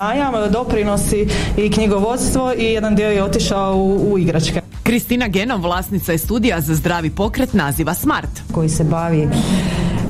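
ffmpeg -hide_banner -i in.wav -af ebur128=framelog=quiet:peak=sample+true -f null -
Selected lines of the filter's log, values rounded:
Integrated loudness:
  I:         -17.0 LUFS
  Threshold: -27.0 LUFS
Loudness range:
  LRA:         1.7 LU
  Threshold: -36.9 LUFS
  LRA low:   -17.8 LUFS
  LRA high:  -16.1 LUFS
Sample peak:
  Peak:       -4.7 dBFS
True peak:
  Peak:       -4.7 dBFS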